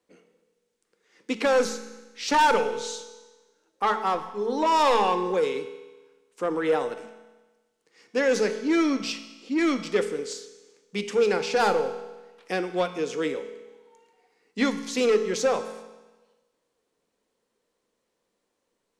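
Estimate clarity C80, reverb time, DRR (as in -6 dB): 12.5 dB, 1.2 s, 8.5 dB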